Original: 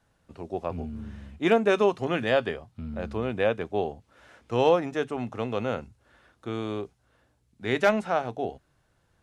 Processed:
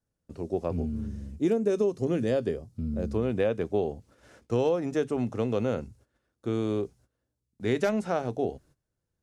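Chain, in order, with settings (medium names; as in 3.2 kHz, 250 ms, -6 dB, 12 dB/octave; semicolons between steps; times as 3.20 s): high-order bell 1.6 kHz -9 dB 2.8 oct, from 1.06 s -15.5 dB, from 3.12 s -8 dB; gate -59 dBFS, range -18 dB; compression 6:1, threshold -26 dBFS, peak gain reduction 8.5 dB; trim +4.5 dB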